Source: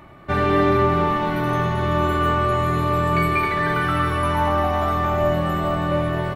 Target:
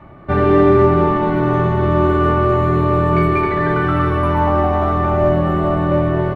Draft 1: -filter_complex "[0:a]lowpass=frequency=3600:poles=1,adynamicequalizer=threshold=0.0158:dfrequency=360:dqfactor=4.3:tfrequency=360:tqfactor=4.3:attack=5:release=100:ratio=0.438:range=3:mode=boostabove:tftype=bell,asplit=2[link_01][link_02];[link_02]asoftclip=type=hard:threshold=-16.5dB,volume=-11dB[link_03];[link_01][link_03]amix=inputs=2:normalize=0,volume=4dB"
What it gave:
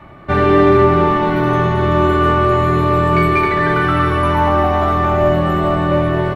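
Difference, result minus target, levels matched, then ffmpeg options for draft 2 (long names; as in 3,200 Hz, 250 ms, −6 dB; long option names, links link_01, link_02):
4,000 Hz band +6.5 dB
-filter_complex "[0:a]lowpass=frequency=1000:poles=1,adynamicequalizer=threshold=0.0158:dfrequency=360:dqfactor=4.3:tfrequency=360:tqfactor=4.3:attack=5:release=100:ratio=0.438:range=3:mode=boostabove:tftype=bell,asplit=2[link_01][link_02];[link_02]asoftclip=type=hard:threshold=-16.5dB,volume=-11dB[link_03];[link_01][link_03]amix=inputs=2:normalize=0,volume=4dB"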